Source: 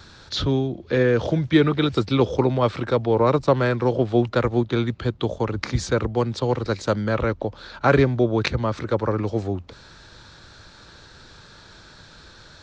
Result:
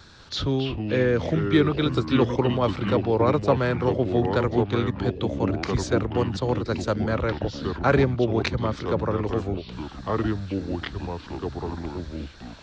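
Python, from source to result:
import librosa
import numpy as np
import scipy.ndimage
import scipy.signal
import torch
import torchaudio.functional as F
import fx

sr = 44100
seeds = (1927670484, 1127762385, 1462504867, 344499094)

y = fx.echo_pitch(x, sr, ms=192, semitones=-4, count=3, db_per_echo=-6.0)
y = F.gain(torch.from_numpy(y), -3.0).numpy()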